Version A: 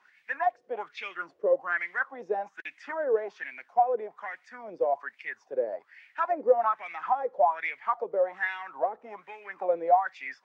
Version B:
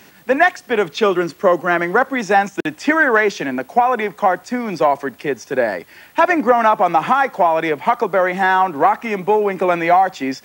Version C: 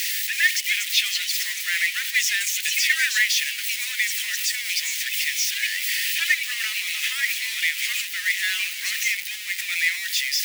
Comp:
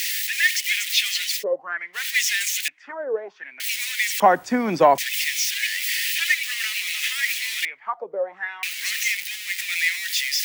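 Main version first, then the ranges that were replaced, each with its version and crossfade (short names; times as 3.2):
C
1.39–1.98 from A, crossfade 0.10 s
2.68–3.6 from A
4.2–4.98 from B
7.65–8.63 from A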